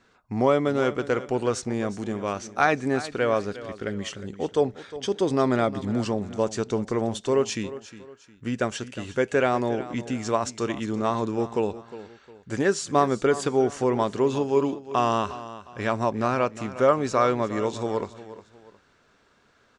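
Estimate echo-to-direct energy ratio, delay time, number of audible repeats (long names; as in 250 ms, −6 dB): −14.5 dB, 358 ms, 2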